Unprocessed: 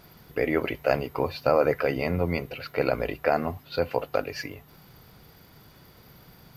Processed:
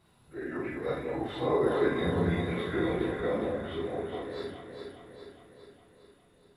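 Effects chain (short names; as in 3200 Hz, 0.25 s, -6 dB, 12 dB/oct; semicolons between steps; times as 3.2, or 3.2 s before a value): phase scrambler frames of 0.1 s; Doppler pass-by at 2.21, 7 m/s, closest 5.9 m; formant shift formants -4 st; echo with dull and thin repeats by turns 0.205 s, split 1100 Hz, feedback 75%, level -3 dB; Schroeder reverb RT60 0.32 s, combs from 31 ms, DRR 1.5 dB; gain -5 dB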